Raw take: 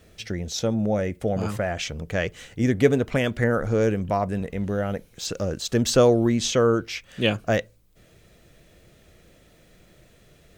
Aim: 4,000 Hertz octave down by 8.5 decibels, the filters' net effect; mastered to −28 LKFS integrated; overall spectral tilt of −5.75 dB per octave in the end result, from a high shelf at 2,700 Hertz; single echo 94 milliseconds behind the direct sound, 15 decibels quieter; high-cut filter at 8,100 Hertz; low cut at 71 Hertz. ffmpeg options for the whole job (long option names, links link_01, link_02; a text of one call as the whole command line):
ffmpeg -i in.wav -af "highpass=71,lowpass=8100,highshelf=frequency=2700:gain=-7,equalizer=frequency=4000:width_type=o:gain=-5,aecho=1:1:94:0.178,volume=-3.5dB" out.wav